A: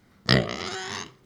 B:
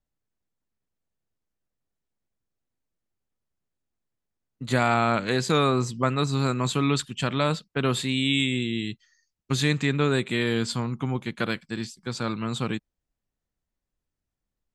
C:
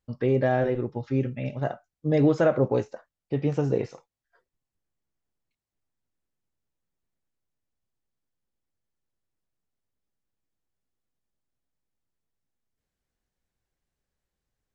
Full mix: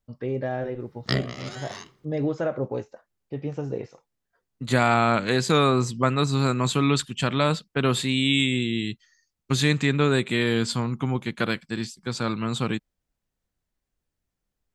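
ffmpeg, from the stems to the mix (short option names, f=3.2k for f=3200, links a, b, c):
-filter_complex "[0:a]adelay=800,volume=-6.5dB[a];[1:a]volume=2dB[b];[2:a]volume=-5.5dB[c];[a][b][c]amix=inputs=3:normalize=0"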